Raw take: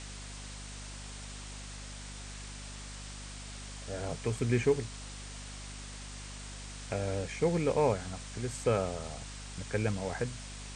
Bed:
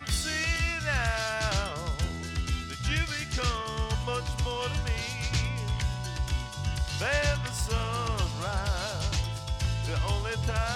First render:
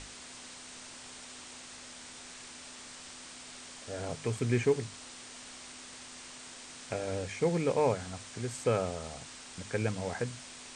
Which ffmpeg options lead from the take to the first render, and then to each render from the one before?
-af "bandreject=f=50:t=h:w=6,bandreject=f=100:t=h:w=6,bandreject=f=150:t=h:w=6,bandreject=f=200:t=h:w=6"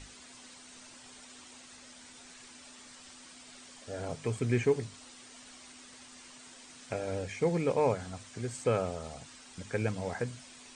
-af "afftdn=nr=8:nf=-49"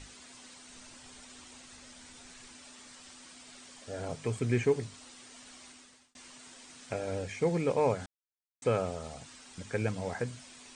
-filter_complex "[0:a]asettb=1/sr,asplit=3[a][b][c];[a]atrim=end=0.694[d];[b]atrim=start=0.69:end=2.56,asetpts=PTS-STARTPTS,afade=t=in:d=0.004:c=qsin,afade=t=out:st=1.866:d=0.004:c=qsin,lowshelf=f=92:g=10.5[e];[c]atrim=start=2.556[f];[d][e]acrossfade=d=0.004:c1=hsin:c2=qsin[g];[g][f]acrossfade=d=0.004:c1=qsin:c2=hsin,asplit=4[h][i][j][k];[h]atrim=end=6.15,asetpts=PTS-STARTPTS,afade=t=out:st=5.66:d=0.49[l];[i]atrim=start=6.15:end=8.06,asetpts=PTS-STARTPTS,afade=t=in:d=0.004:c=hsin,afade=t=out:st=1.906:d=0.004:c=hsin[m];[j]atrim=start=8.06:end=8.62,asetpts=PTS-STARTPTS,volume=0[n];[k]atrim=start=8.62,asetpts=PTS-STARTPTS,afade=t=in:d=0.004:c=hsin[o];[l][m][n][o]concat=n=4:v=0:a=1"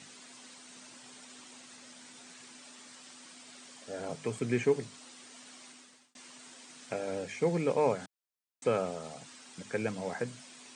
-af "highpass=f=140:w=0.5412,highpass=f=140:w=1.3066"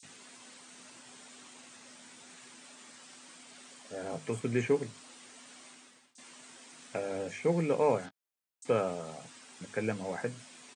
-filter_complex "[0:a]asplit=2[a][b];[b]adelay=18,volume=-12dB[c];[a][c]amix=inputs=2:normalize=0,acrossover=split=4900[d][e];[d]adelay=30[f];[f][e]amix=inputs=2:normalize=0"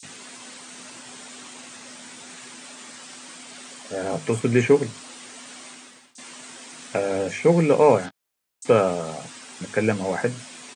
-af "volume=11.5dB"

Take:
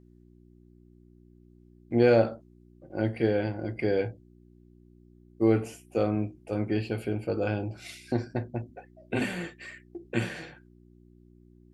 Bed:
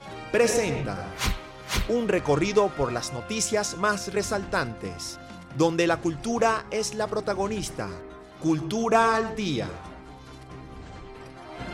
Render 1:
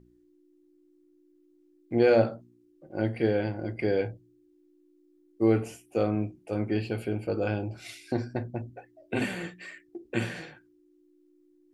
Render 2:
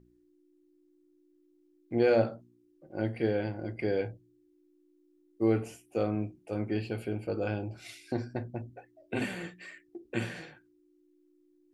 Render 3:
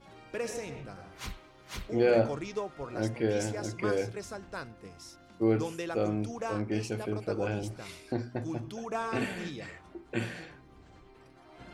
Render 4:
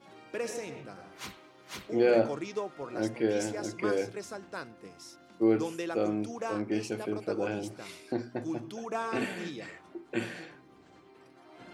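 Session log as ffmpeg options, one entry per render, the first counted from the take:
-af "bandreject=f=60:t=h:w=4,bandreject=f=120:t=h:w=4,bandreject=f=180:t=h:w=4,bandreject=f=240:t=h:w=4"
-af "volume=-3.5dB"
-filter_complex "[1:a]volume=-14dB[a];[0:a][a]amix=inputs=2:normalize=0"
-af "highpass=170,equalizer=f=330:w=4.3:g=3"

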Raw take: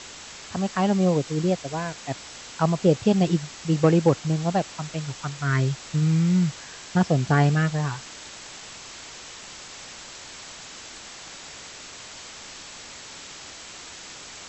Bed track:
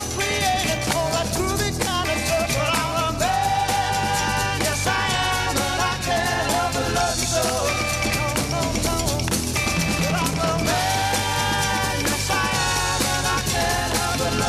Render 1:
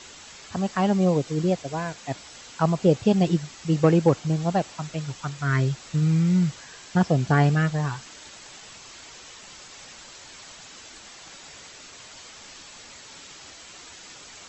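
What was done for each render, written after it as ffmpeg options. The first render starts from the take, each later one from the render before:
-af "afftdn=nr=6:nf=-42"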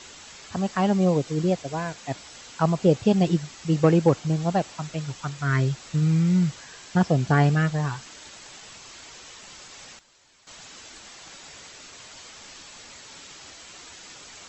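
-filter_complex "[0:a]asplit=3[a][b][c];[a]atrim=end=9.99,asetpts=PTS-STARTPTS,afade=t=out:st=9.85:d=0.14:c=log:silence=0.188365[d];[b]atrim=start=9.99:end=10.47,asetpts=PTS-STARTPTS,volume=-14.5dB[e];[c]atrim=start=10.47,asetpts=PTS-STARTPTS,afade=t=in:d=0.14:c=log:silence=0.188365[f];[d][e][f]concat=n=3:v=0:a=1"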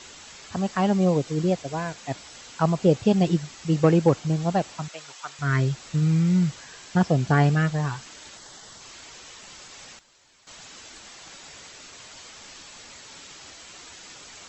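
-filter_complex "[0:a]asettb=1/sr,asplit=3[a][b][c];[a]atrim=end=4.884[d];[b]atrim=start=4.88:end=5.39,asetpts=PTS-STARTPTS,afade=t=in:d=0.004:c=qsin,afade=t=out:st=0.506:d=0.004:c=qsin,highpass=650[e];[c]atrim=start=5.386[f];[d][e]acrossfade=d=0.004:c1=hsin:c2=qsin[g];[g][f]acrossfade=d=0.004:c1=qsin:c2=hsin,asettb=1/sr,asplit=3[h][i][j];[h]atrim=end=8.374[k];[i]atrim=start=8.37:end=8.81,asetpts=PTS-STARTPTS,afade=t=in:d=0.004:c=qsin,afade=t=out:st=0.436:d=0.004:c=qsin,equalizer=f=2.5k:t=o:w=0.27:g=-15[l];[j]atrim=start=8.806[m];[k][l]acrossfade=d=0.004:c1=hsin:c2=qsin[n];[n][m]acrossfade=d=0.004:c1=qsin:c2=hsin"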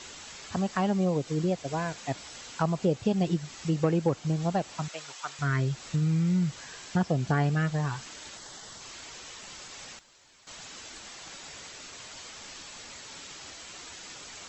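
-af "acompressor=threshold=-27dB:ratio=2"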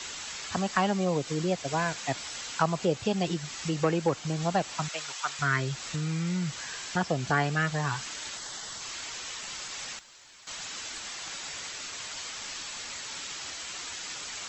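-filter_complex "[0:a]acrossover=split=270|900[a][b][c];[a]alimiter=level_in=5dB:limit=-24dB:level=0:latency=1,volume=-5dB[d];[c]acontrast=61[e];[d][b][e]amix=inputs=3:normalize=0"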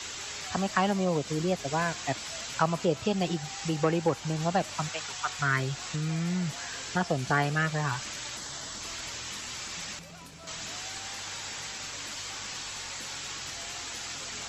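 -filter_complex "[1:a]volume=-26.5dB[a];[0:a][a]amix=inputs=2:normalize=0"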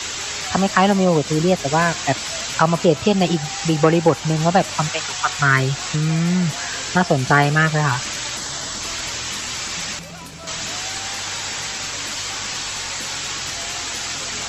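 -af "volume=11.5dB,alimiter=limit=-1dB:level=0:latency=1"

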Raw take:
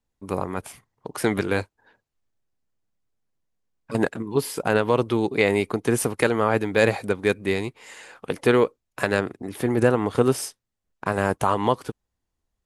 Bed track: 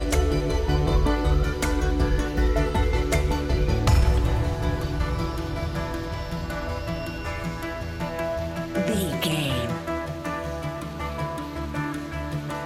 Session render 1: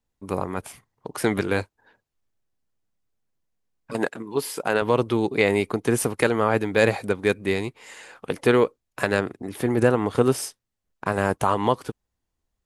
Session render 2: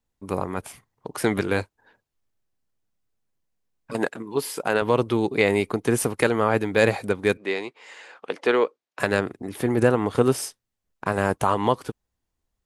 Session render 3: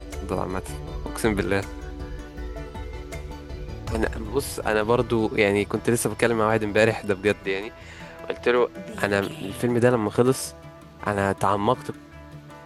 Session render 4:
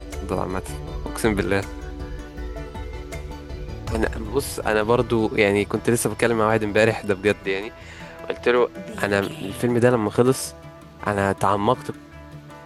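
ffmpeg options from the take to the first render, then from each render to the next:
-filter_complex "[0:a]asettb=1/sr,asplit=3[a][b][c];[a]atrim=end=3.934[d];[b]atrim=start=3.93:end=4.82,asetpts=PTS-STARTPTS,afade=t=in:d=0.004:c=qsin,afade=t=out:st=0.886:d=0.004:c=qsin,highpass=f=340:p=1[e];[c]atrim=start=4.816[f];[d][e]acrossfade=d=0.004:c1=hsin:c2=qsin[g];[g][f]acrossfade=d=0.004:c1=qsin:c2=hsin"
-filter_complex "[0:a]asettb=1/sr,asplit=3[a][b][c];[a]atrim=end=7.374[d];[b]atrim=start=7.37:end=9,asetpts=PTS-STARTPTS,afade=t=in:d=0.004:c=qsin,afade=t=out:st=1.626:d=0.004:c=qsin,highpass=370,lowpass=5.2k[e];[c]atrim=start=8.996[f];[d][e]acrossfade=d=0.004:c1=hsin:c2=qsin[g];[g][f]acrossfade=d=0.004:c1=qsin:c2=hsin"
-filter_complex "[1:a]volume=-12.5dB[a];[0:a][a]amix=inputs=2:normalize=0"
-af "volume=2dB,alimiter=limit=-3dB:level=0:latency=1"

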